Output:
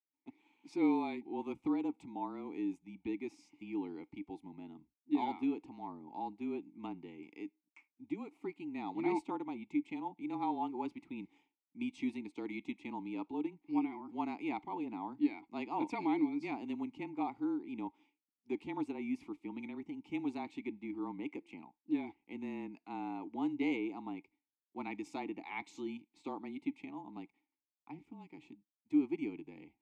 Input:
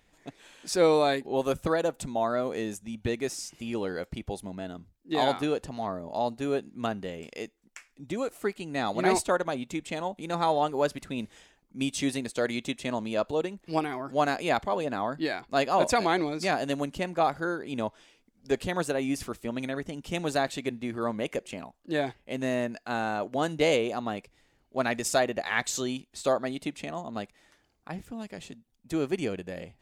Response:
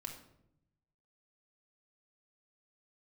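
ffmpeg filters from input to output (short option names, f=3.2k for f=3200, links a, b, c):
-filter_complex "[0:a]agate=range=-33dB:threshold=-48dB:ratio=3:detection=peak,afreqshift=-26,asplit=3[a][b][c];[a]bandpass=f=300:t=q:w=8,volume=0dB[d];[b]bandpass=f=870:t=q:w=8,volume=-6dB[e];[c]bandpass=f=2.24k:t=q:w=8,volume=-9dB[f];[d][e][f]amix=inputs=3:normalize=0,volume=1.5dB"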